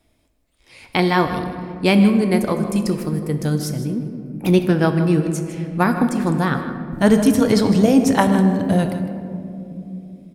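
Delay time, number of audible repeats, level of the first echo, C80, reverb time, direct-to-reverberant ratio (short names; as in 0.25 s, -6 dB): 0.156 s, 1, -12.5 dB, 8.0 dB, 2.9 s, 6.0 dB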